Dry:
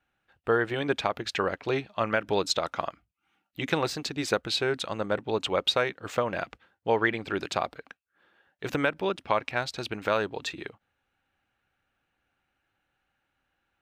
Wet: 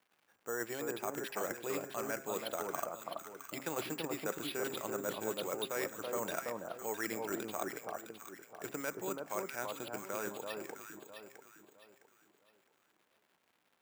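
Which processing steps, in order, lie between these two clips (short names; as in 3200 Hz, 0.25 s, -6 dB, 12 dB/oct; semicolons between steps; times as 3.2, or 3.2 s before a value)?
Doppler pass-by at 4.42, 7 m/s, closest 10 m; reverse; compressor 12:1, threshold -37 dBFS, peak gain reduction 18.5 dB; reverse; crackle 320/s -57 dBFS; LPF 4800 Hz 24 dB/oct; de-hum 134.4 Hz, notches 19; careless resampling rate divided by 6×, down none, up zero stuff; three-band isolator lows -17 dB, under 150 Hz, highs -16 dB, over 3000 Hz; on a send: echo with dull and thin repeats by turns 0.33 s, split 1200 Hz, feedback 57%, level -2.5 dB; on the sum: gain +2.5 dB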